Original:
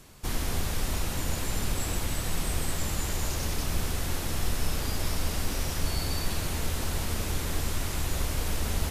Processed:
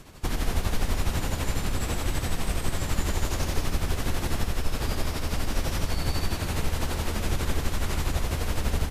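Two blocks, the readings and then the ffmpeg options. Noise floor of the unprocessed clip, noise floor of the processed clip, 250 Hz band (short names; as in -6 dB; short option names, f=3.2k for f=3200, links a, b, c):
-33 dBFS, -33 dBFS, +3.0 dB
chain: -filter_complex "[0:a]acompressor=threshold=-27dB:ratio=6,highshelf=f=4.9k:g=-8,asplit=2[a][b];[b]aecho=0:1:123:0.562[c];[a][c]amix=inputs=2:normalize=0,tremolo=f=12:d=0.53,volume=7.5dB"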